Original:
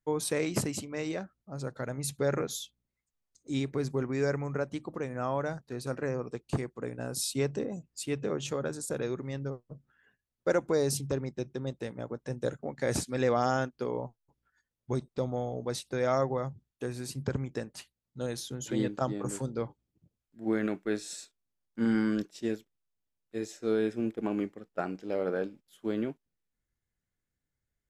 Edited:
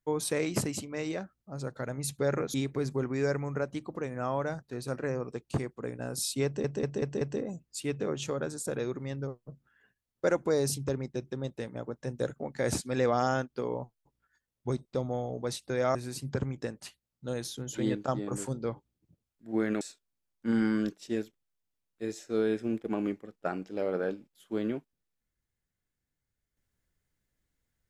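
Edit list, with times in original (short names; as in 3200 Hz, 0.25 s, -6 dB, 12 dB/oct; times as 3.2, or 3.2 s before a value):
2.54–3.53 cut
7.44 stutter 0.19 s, 5 plays
16.18–16.88 cut
20.74–21.14 cut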